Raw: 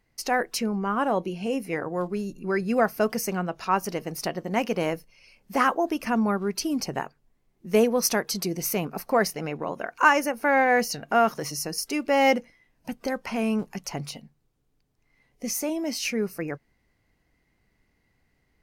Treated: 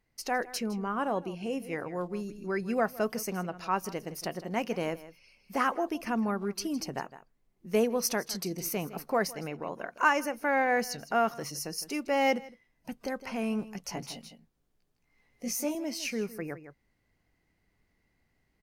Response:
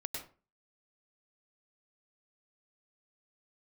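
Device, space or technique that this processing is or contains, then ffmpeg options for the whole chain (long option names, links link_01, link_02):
ducked delay: -filter_complex "[0:a]asettb=1/sr,asplit=3[link_01][link_02][link_03];[link_01]atrim=end=13.844[link_04];[link_02]atrim=start=13.84:end=15.75,asetpts=PTS-STARTPTS,afade=type=in:duration=0.004:curve=qsin,afade=type=out:start_time=1.906:duration=0.004:curve=qsin,asplit=2[link_05][link_06];[link_06]adelay=17,volume=-2.5dB[link_07];[link_05][link_07]amix=inputs=2:normalize=0,atrim=end_sample=84231[link_08];[link_03]atrim=start=15.746[link_09];[link_04][link_08]acrossfade=duration=0.004:curve1=hsin:curve2=qsin[link_10];[link_10][link_09]acrossfade=duration=0.004:curve1=qsin:curve2=hsin,asplit=3[link_11][link_12][link_13];[link_12]adelay=160,volume=-3dB[link_14];[link_13]apad=whole_len=828435[link_15];[link_14][link_15]sidechaincompress=threshold=-36dB:ratio=8:attack=16:release=738[link_16];[link_11][link_16]amix=inputs=2:normalize=0,volume=-6dB"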